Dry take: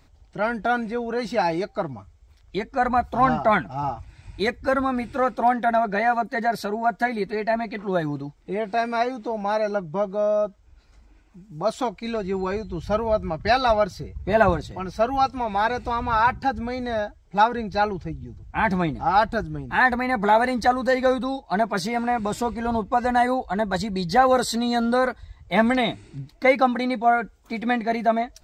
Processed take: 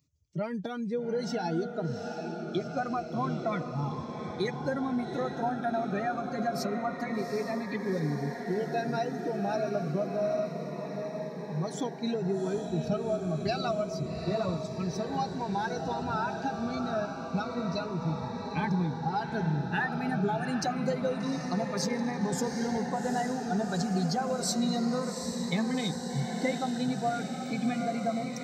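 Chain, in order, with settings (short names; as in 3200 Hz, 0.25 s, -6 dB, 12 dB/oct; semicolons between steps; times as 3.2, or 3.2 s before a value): per-bin expansion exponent 1.5; fifteen-band EQ 160 Hz +10 dB, 400 Hz +4 dB, 6300 Hz +10 dB; compressor, threshold -30 dBFS, peak gain reduction 17.5 dB; HPF 92 Hz 24 dB/oct; diffused feedback echo 0.785 s, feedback 75%, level -6.5 dB; cascading phaser falling 0.28 Hz; gain +2.5 dB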